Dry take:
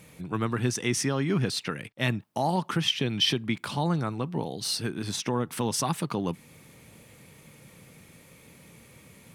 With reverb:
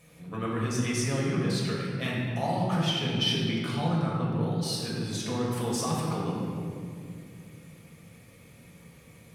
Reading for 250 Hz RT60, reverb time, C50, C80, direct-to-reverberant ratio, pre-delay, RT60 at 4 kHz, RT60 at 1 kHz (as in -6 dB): 3.4 s, 2.2 s, -0.5 dB, 1.5 dB, -5.0 dB, 4 ms, 1.3 s, 2.0 s